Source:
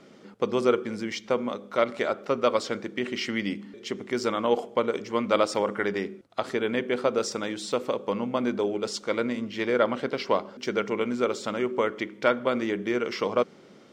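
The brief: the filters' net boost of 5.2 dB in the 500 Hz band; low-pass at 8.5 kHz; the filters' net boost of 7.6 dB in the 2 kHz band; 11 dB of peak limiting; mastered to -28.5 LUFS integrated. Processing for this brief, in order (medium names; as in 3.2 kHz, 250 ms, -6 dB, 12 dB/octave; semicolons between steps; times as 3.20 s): low-pass 8.5 kHz; peaking EQ 500 Hz +5.5 dB; peaking EQ 2 kHz +9 dB; trim -3 dB; peak limiter -15 dBFS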